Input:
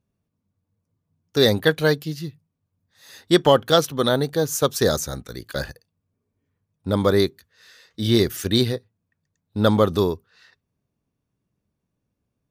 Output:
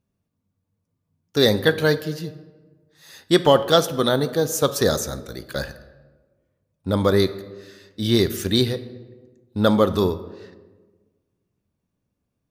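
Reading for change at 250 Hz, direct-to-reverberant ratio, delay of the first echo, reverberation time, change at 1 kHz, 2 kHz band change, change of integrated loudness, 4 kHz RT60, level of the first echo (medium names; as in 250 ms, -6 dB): +0.5 dB, 11.5 dB, no echo, 1.3 s, +0.5 dB, 0.0 dB, +0.5 dB, 0.80 s, no echo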